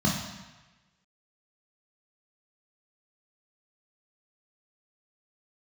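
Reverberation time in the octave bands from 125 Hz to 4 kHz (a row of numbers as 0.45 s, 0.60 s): 1.2 s, 0.95 s, 1.1 s, 1.2 s, 1.3 s, 1.1 s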